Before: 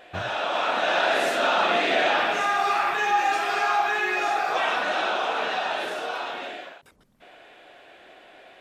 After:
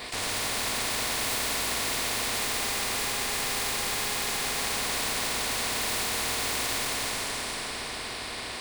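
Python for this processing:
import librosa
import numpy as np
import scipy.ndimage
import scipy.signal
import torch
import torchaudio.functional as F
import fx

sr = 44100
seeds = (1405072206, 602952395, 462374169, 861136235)

p1 = fx.lower_of_two(x, sr, delay_ms=2.8)
p2 = fx.peak_eq(p1, sr, hz=1400.0, db=-6.0, octaves=0.43)
p3 = fx.rider(p2, sr, range_db=10, speed_s=0.5)
p4 = fx.ripple_eq(p3, sr, per_octave=0.95, db=12)
p5 = fx.level_steps(p4, sr, step_db=21)
p6 = p5 + fx.echo_single(p5, sr, ms=315, db=-5.5, dry=0)
p7 = fx.rev_plate(p6, sr, seeds[0], rt60_s=3.3, hf_ratio=0.8, predelay_ms=0, drr_db=-4.5)
p8 = fx.spectral_comp(p7, sr, ratio=4.0)
y = F.gain(torch.from_numpy(p8), 6.5).numpy()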